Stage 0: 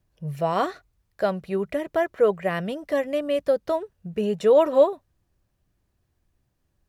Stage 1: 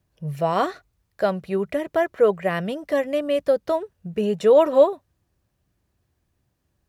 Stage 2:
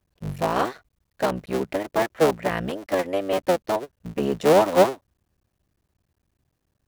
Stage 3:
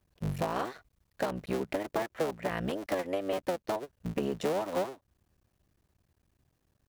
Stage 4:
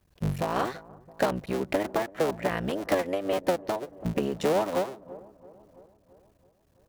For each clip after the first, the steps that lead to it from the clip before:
high-pass 50 Hz; trim +2 dB
cycle switcher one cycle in 3, muted
compression 8:1, threshold -28 dBFS, peak gain reduction 17.5 dB
feedback echo behind a low-pass 334 ms, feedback 58%, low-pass 920 Hz, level -19 dB; tremolo triangle 1.8 Hz, depth 45%; trim +7 dB

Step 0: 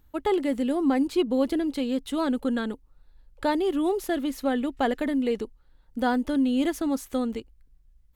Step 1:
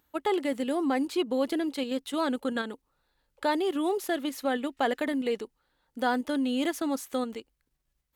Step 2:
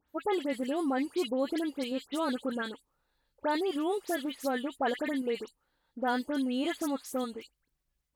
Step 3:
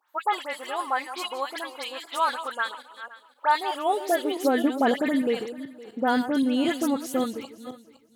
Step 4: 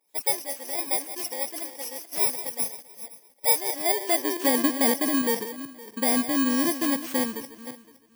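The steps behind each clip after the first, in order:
high-pass 500 Hz 6 dB/octave; in parallel at -1 dB: level held to a coarse grid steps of 16 dB; on the sum: trim -2.5 dB
phase dispersion highs, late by 89 ms, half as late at 2.6 kHz; trim -3 dB
backward echo that repeats 257 ms, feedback 41%, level -12 dB; high-pass sweep 1 kHz -> 120 Hz, 3.55–5.34 s; trim +6 dB
bit-reversed sample order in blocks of 32 samples

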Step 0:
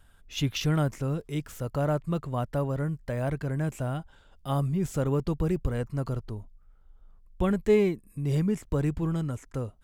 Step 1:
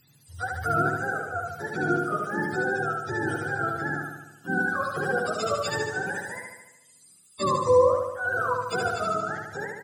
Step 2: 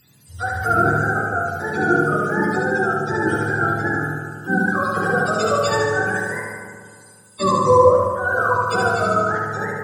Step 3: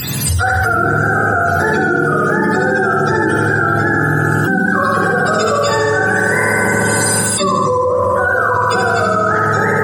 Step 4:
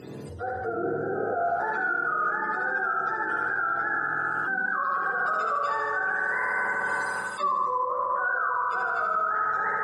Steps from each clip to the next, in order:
spectrum inverted on a logarithmic axis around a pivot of 460 Hz; on a send: feedback delay 74 ms, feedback 59%, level -3 dB; on the sum: trim +1.5 dB
reverberation RT60 2.0 s, pre-delay 7 ms, DRR 1 dB; trim +5 dB
level flattener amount 100%; trim -5.5 dB
band-pass sweep 430 Hz -> 1.2 kHz, 1.20–1.82 s; peak limiter -13 dBFS, peak gain reduction 6 dB; trim -5.5 dB

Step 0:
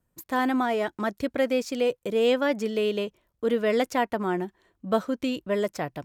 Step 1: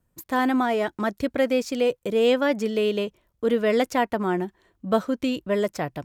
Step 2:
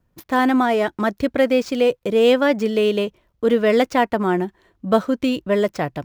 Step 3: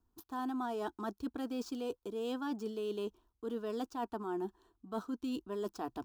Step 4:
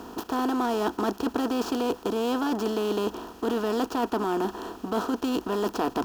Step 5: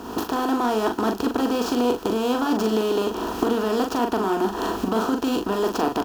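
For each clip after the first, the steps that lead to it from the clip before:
bass shelf 150 Hz +3.5 dB; trim +2 dB
median filter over 5 samples; trim +5 dB
static phaser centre 560 Hz, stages 6; reverse; compression 6:1, threshold -28 dBFS, peak gain reduction 14 dB; reverse; trim -7.5 dB
spectral levelling over time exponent 0.4; in parallel at -9 dB: saturation -32 dBFS, distortion -13 dB; on the sum: trim +5.5 dB
recorder AGC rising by 43 dB/s; doubling 41 ms -5.5 dB; trim +3 dB

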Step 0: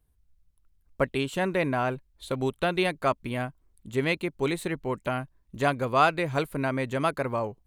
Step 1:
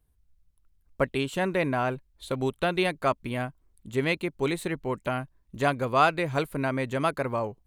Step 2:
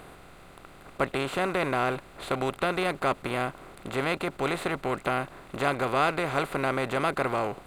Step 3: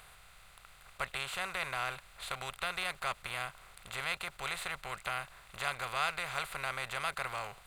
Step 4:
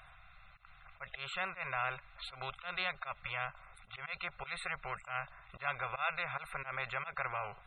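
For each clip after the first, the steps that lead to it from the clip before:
no audible change
spectral levelling over time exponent 0.4; trim -6.5 dB
amplifier tone stack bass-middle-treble 10-0-10
slow attack 113 ms; loudest bins only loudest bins 64; trim +1 dB

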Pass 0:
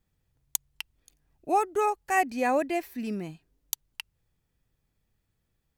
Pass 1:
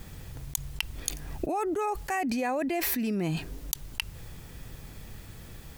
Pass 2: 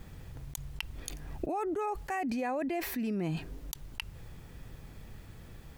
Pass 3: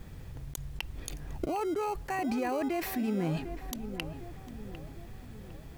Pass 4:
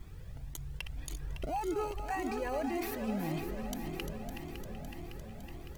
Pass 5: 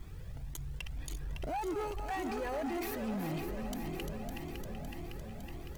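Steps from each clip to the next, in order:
level flattener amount 100%; trim -8.5 dB
treble shelf 3.5 kHz -8 dB; trim -3.5 dB
in parallel at -11 dB: sample-and-hold 25×; on the sum: tape echo 754 ms, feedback 56%, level -9 dB, low-pass 1.4 kHz
backward echo that repeats 279 ms, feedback 81%, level -8.5 dB; Shepard-style flanger rising 1.8 Hz
saturation -33.5 dBFS, distortion -13 dB; trim +2 dB

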